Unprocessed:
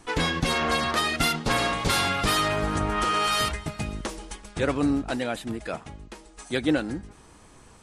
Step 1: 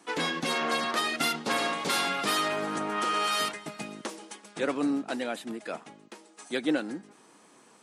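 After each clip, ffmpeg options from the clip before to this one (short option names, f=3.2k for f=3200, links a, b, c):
-af "highpass=f=200:w=0.5412,highpass=f=200:w=1.3066,volume=-3.5dB"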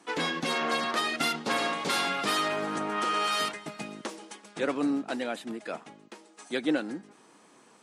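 -af "highshelf=f=11k:g=-8"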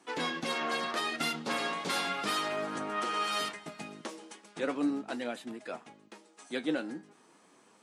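-af "flanger=delay=7.8:depth=4.8:regen=62:speed=0.36:shape=sinusoidal"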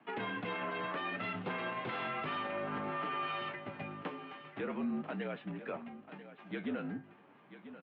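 -af "highpass=f=160:t=q:w=0.5412,highpass=f=160:t=q:w=1.307,lowpass=f=3k:t=q:w=0.5176,lowpass=f=3k:t=q:w=0.7071,lowpass=f=3k:t=q:w=1.932,afreqshift=-53,alimiter=level_in=5.5dB:limit=-24dB:level=0:latency=1:release=67,volume=-5.5dB,aecho=1:1:990|1980:0.211|0.0338"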